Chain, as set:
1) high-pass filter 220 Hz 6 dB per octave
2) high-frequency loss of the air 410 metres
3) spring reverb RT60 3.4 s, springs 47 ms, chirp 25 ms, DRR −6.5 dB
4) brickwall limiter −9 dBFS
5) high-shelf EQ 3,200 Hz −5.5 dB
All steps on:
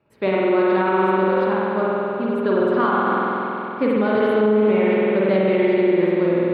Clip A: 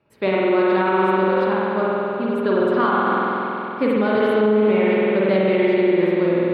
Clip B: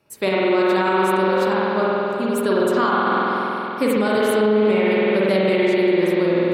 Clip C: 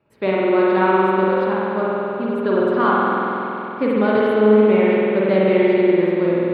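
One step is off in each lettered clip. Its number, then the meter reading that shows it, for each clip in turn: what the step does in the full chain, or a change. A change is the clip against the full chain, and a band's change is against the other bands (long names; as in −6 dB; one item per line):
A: 5, 4 kHz band +2.5 dB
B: 2, 4 kHz band +8.0 dB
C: 4, change in crest factor +4.5 dB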